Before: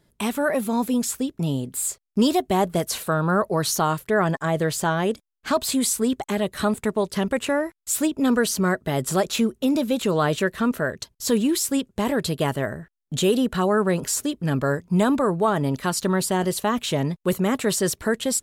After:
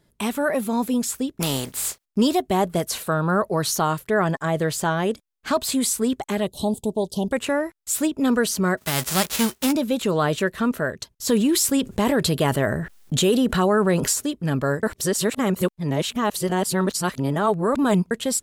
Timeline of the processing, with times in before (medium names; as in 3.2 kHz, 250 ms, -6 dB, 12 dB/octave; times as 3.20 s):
1.40–2.04 s: spectral contrast reduction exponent 0.51
6.47–7.32 s: elliptic band-stop 850–3300 Hz, stop band 60 dB
8.77–9.71 s: formants flattened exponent 0.3
11.29–14.13 s: level flattener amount 50%
14.83–18.11 s: reverse